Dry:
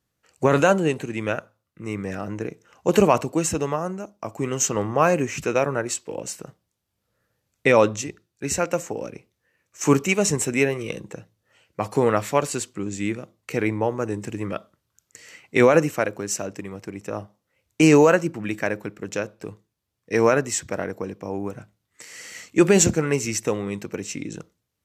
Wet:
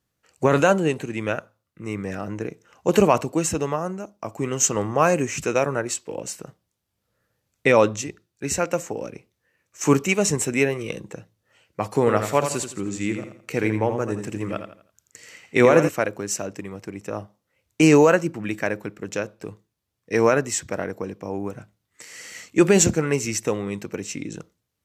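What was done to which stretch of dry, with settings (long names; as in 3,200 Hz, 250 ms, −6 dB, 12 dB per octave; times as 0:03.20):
0:04.63–0:05.80: parametric band 7,900 Hz +5.5 dB 0.98 octaves
0:11.99–0:15.89: repeating echo 83 ms, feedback 34%, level −8 dB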